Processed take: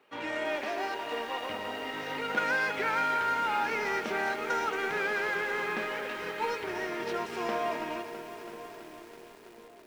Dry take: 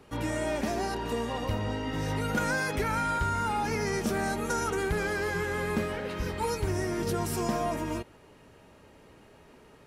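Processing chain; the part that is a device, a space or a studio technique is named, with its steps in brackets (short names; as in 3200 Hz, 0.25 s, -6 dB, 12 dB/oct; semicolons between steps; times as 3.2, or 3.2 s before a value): 0.57–1.5 HPF 290 Hz 12 dB/oct; phone line with mismatched companding (BPF 380–3400 Hz; G.711 law mismatch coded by A); bell 2500 Hz +6 dB 1.7 oct; narrowing echo 1.045 s, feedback 62%, band-pass 320 Hz, level -13 dB; lo-fi delay 0.329 s, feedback 80%, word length 8-bit, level -11 dB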